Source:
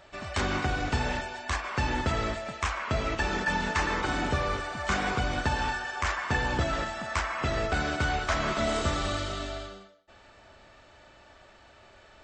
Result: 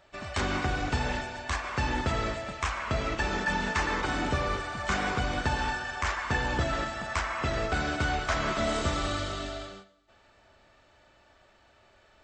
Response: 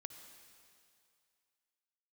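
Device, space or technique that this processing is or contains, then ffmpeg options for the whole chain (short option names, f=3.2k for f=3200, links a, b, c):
keyed gated reverb: -filter_complex "[0:a]asplit=3[a][b][c];[1:a]atrim=start_sample=2205[d];[b][d]afir=irnorm=-1:irlink=0[e];[c]apad=whole_len=539691[f];[e][f]sidechaingate=range=-15dB:threshold=-46dB:ratio=16:detection=peak,volume=7.5dB[g];[a][g]amix=inputs=2:normalize=0,volume=-8dB"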